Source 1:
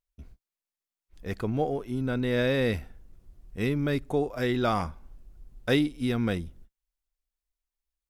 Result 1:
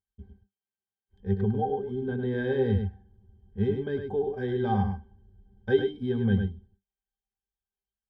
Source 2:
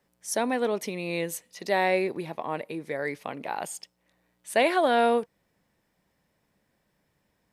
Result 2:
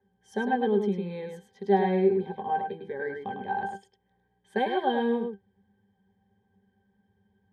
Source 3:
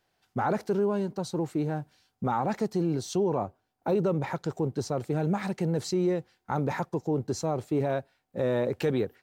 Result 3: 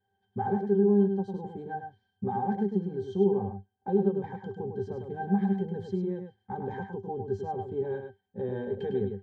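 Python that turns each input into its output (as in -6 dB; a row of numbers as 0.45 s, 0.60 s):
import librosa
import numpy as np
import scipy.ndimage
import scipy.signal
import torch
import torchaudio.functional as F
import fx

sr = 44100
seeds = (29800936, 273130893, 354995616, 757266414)

y = fx.octave_resonator(x, sr, note='G', decay_s=0.13)
y = y + 10.0 ** (-6.0 / 20.0) * np.pad(y, (int(103 * sr / 1000.0), 0))[:len(y)]
y = y * 10.0 ** (-30 / 20.0) / np.sqrt(np.mean(np.square(y)))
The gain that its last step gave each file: +10.0 dB, +12.5 dB, +6.5 dB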